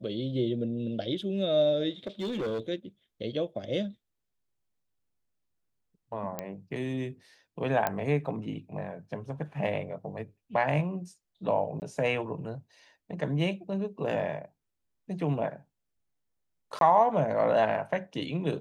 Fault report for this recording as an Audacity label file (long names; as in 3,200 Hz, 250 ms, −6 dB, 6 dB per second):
2.070000	2.600000	clipping −28.5 dBFS
6.390000	6.390000	click −18 dBFS
7.870000	7.870000	click −13 dBFS
11.800000	11.820000	drop-out 19 ms
16.790000	16.810000	drop-out 22 ms